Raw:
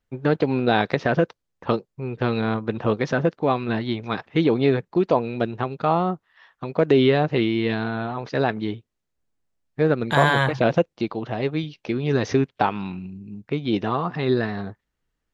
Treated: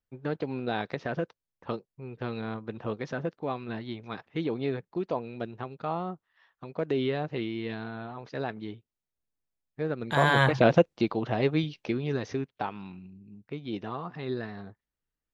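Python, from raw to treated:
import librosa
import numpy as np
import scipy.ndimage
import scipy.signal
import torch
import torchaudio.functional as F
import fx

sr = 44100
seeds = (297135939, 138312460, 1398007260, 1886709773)

y = fx.gain(x, sr, db=fx.line((9.94, -11.5), (10.44, -1.0), (11.77, -1.0), (12.28, -12.0)))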